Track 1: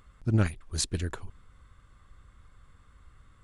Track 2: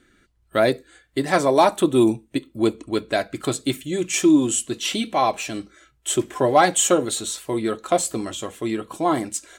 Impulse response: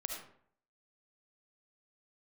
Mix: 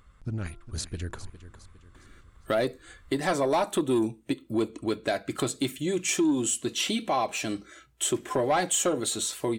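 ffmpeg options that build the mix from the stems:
-filter_complex "[0:a]bandreject=f=344:t=h:w=4,bandreject=f=688:t=h:w=4,bandreject=f=1.032k:t=h:w=4,bandreject=f=1.376k:t=h:w=4,alimiter=limit=-22dB:level=0:latency=1:release=67,volume=-0.5dB,asplit=2[a][b];[b]volume=-15dB[c];[1:a]highpass=62,asoftclip=type=tanh:threshold=-10.5dB,adelay=1950,volume=2dB[d];[c]aecho=0:1:407|814|1221|1628|2035|2442:1|0.41|0.168|0.0689|0.0283|0.0116[e];[a][d][e]amix=inputs=3:normalize=0,acompressor=threshold=-29dB:ratio=2"

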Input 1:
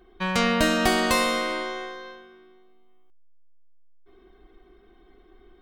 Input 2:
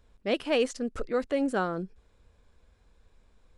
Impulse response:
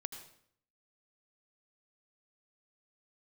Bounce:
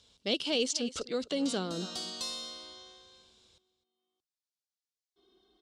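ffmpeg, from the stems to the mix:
-filter_complex "[0:a]equalizer=f=2.4k:w=2.1:g=-12,adelay=1100,volume=-13dB,afade=t=in:st=3.85:d=0.57:silence=0.281838[a];[1:a]bandreject=f=2.5k:w=11,volume=-2.5dB,asplit=2[b][c];[c]volume=-19dB,aecho=0:1:256:1[d];[a][b][d]amix=inputs=3:normalize=0,acrossover=split=460[e][f];[f]acompressor=threshold=-38dB:ratio=6[g];[e][g]amix=inputs=2:normalize=0,aexciter=amount=9.2:drive=7.2:freq=2.8k,highpass=100,lowpass=4.5k"

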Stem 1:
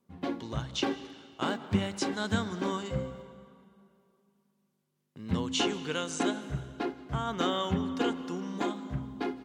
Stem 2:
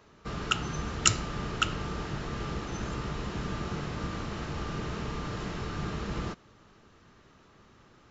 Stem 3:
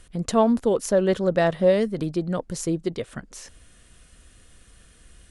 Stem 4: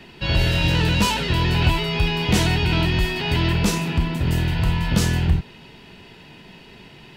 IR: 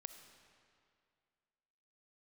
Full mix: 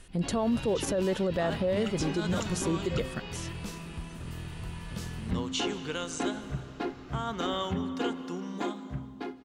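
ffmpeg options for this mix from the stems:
-filter_complex "[0:a]dynaudnorm=f=390:g=5:m=8dB,volume=-8.5dB[a];[1:a]adelay=1350,volume=-15.5dB[b];[2:a]volume=-1.5dB[c];[3:a]volume=-19dB[d];[a][b][c][d]amix=inputs=4:normalize=0,alimiter=limit=-20.5dB:level=0:latency=1:release=43"

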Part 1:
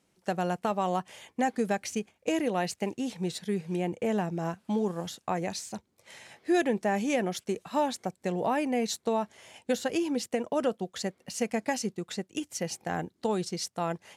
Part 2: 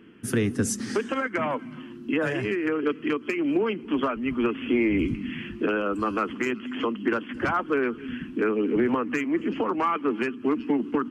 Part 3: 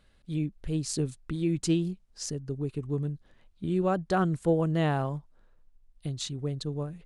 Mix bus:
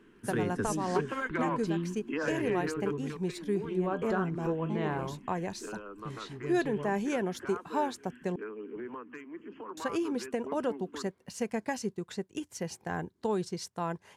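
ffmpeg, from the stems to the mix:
-filter_complex "[0:a]lowshelf=f=160:g=11.5,volume=-7dB,asplit=3[a][b][c];[a]atrim=end=8.36,asetpts=PTS-STARTPTS,afade=t=out:st=8.356:d=0.004:c=hsin[d];[b]atrim=start=8.36:end=9.77,asetpts=PTS-STARTPTS,volume=0[e];[c]atrim=start=9.77,asetpts=PTS-STARTPTS,afade=t=in:d=0.004:c=hsin[f];[d][e][f]concat=n=3:v=0:a=1[g];[1:a]volume=-10.5dB,afade=t=out:st=2.47:d=0.7:silence=0.298538[h];[2:a]lowpass=4.1k,flanger=delay=9.2:depth=3:regen=73:speed=1.4:shape=triangular,volume=-4dB,asplit=2[i][j];[j]apad=whole_len=624751[k];[g][k]sidechaincompress=threshold=-38dB:ratio=4:attack=5.4:release=144[l];[l][h][i]amix=inputs=3:normalize=0,equalizer=f=400:t=o:w=0.33:g=7,equalizer=f=1k:t=o:w=0.33:g=9,equalizer=f=1.6k:t=o:w=0.33:g=6"

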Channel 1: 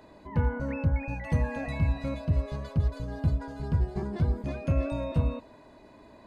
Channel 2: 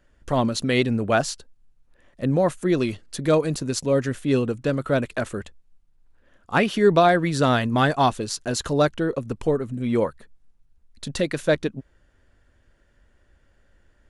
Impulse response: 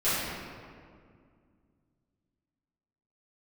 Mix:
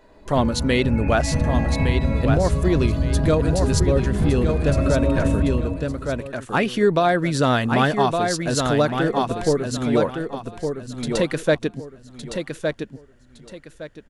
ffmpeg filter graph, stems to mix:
-filter_complex "[0:a]dynaudnorm=f=170:g=11:m=8dB,flanger=delay=2:depth=1.4:regen=65:speed=0.5:shape=triangular,volume=0dB,asplit=2[a][b];[b]volume=-9.5dB[c];[1:a]volume=2dB,asplit=2[d][e];[e]volume=-6dB[f];[2:a]atrim=start_sample=2205[g];[c][g]afir=irnorm=-1:irlink=0[h];[f]aecho=0:1:1162|2324|3486|4648:1|0.26|0.0676|0.0176[i];[a][d][h][i]amix=inputs=4:normalize=0,alimiter=limit=-8dB:level=0:latency=1:release=336"

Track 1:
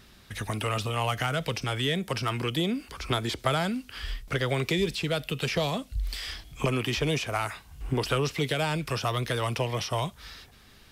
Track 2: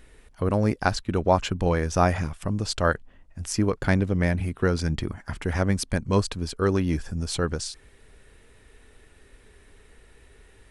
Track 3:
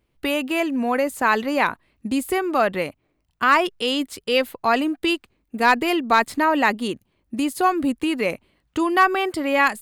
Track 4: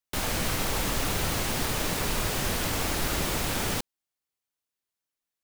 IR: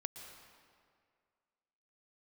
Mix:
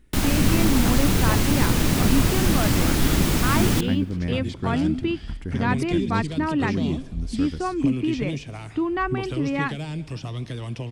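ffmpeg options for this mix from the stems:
-filter_complex "[0:a]lowpass=f=9.2k:w=0.5412,lowpass=f=9.2k:w=1.3066,equalizer=f=1.3k:w=1.8:g=-7.5,adelay=1200,volume=-11dB,asplit=2[a][b];[b]volume=-3.5dB[c];[1:a]volume=-14dB,asplit=2[d][e];[e]volume=-6dB[f];[2:a]lowpass=3.1k,volume=-9dB[g];[3:a]volume=2dB,asplit=2[h][i];[i]volume=-13.5dB[j];[4:a]atrim=start_sample=2205[k];[c][f][j]amix=inputs=3:normalize=0[l];[l][k]afir=irnorm=-1:irlink=0[m];[a][d][g][h][m]amix=inputs=5:normalize=0,lowshelf=f=380:t=q:w=1.5:g=7.5"

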